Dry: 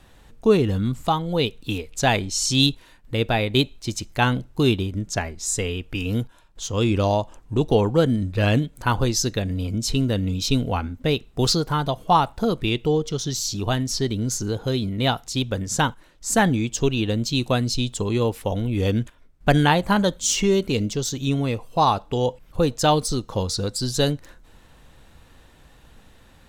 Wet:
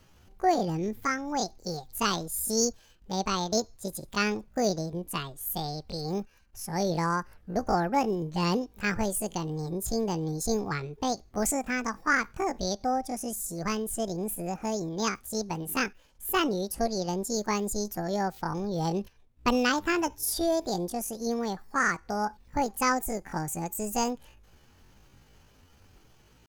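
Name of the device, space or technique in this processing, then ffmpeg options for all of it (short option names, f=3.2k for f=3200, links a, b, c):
chipmunk voice: -af "asetrate=74167,aresample=44100,atempo=0.594604,volume=-7.5dB"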